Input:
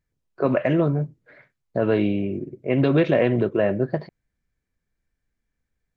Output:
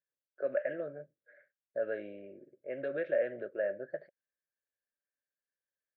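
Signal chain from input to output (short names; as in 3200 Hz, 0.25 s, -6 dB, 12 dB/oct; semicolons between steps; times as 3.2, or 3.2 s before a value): double band-pass 960 Hz, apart 1.5 oct; gain -6.5 dB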